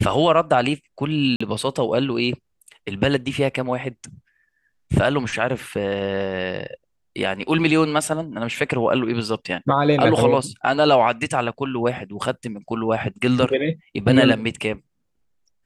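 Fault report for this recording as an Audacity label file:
1.360000	1.410000	gap 45 ms

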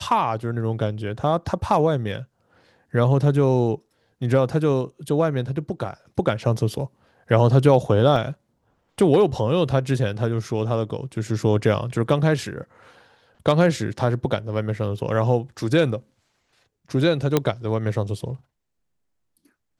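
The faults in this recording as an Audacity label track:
8.160000	8.160000	gap 2.2 ms
17.370000	17.370000	pop -5 dBFS

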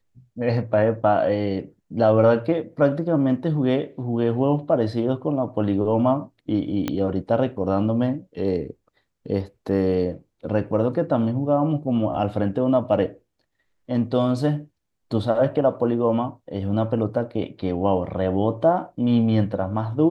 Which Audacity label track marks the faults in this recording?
6.880000	6.880000	pop -11 dBFS

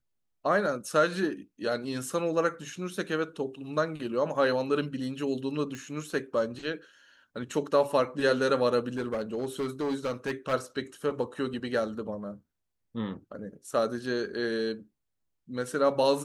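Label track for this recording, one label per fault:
5.750000	5.750000	pop -25 dBFS
8.970000	10.540000	clipped -26 dBFS

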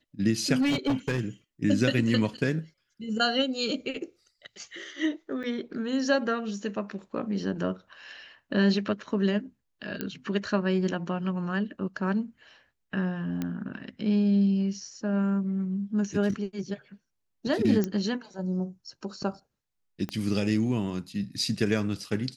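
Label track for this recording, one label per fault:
0.610000	1.200000	clipped -21.5 dBFS
5.430000	5.440000	gap 7.1 ms
10.010000	10.010000	pop -16 dBFS
13.420000	13.420000	pop -18 dBFS
17.840000	17.840000	pop -15 dBFS
20.090000	20.090000	pop -20 dBFS

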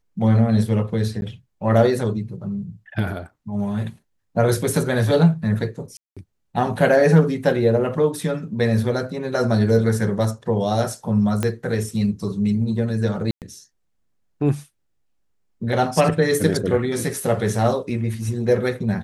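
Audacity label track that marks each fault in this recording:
1.210000	1.220000	gap
5.970000	6.170000	gap 0.196 s
11.430000	11.430000	pop -9 dBFS
13.310000	13.420000	gap 0.108 s

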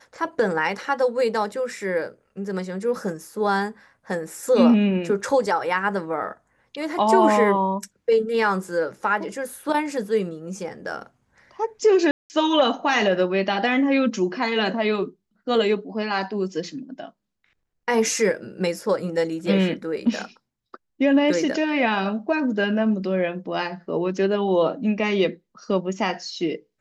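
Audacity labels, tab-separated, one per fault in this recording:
12.110000	12.300000	gap 0.189 s

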